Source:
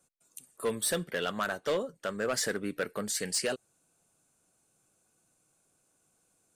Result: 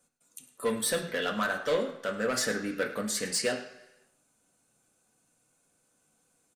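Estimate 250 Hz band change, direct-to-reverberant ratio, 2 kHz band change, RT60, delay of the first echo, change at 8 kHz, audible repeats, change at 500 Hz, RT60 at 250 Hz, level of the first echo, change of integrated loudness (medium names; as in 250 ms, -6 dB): +3.0 dB, 1.0 dB, +3.5 dB, 0.95 s, 104 ms, +0.5 dB, 1, +2.0 dB, 0.85 s, -15.5 dB, +2.0 dB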